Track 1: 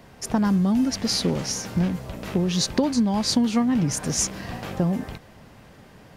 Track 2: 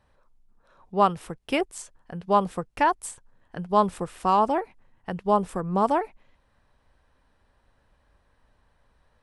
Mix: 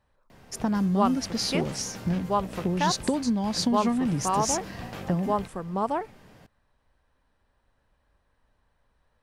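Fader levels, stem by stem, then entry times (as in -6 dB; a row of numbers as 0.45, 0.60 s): -4.5, -5.0 dB; 0.30, 0.00 s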